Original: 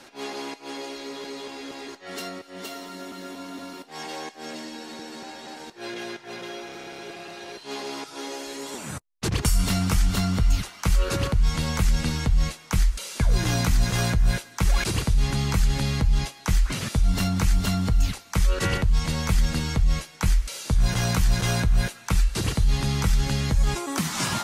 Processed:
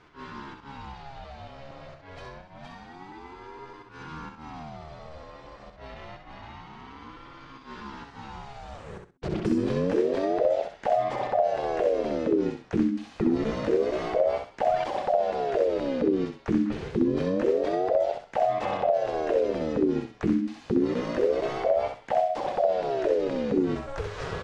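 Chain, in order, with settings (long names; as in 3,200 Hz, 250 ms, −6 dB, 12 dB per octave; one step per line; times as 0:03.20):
head-to-tape spacing loss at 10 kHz 30 dB
repeating echo 64 ms, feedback 24%, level −5.5 dB
ring modulator whose carrier an LFO sweeps 470 Hz, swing 45%, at 0.27 Hz
level −1.5 dB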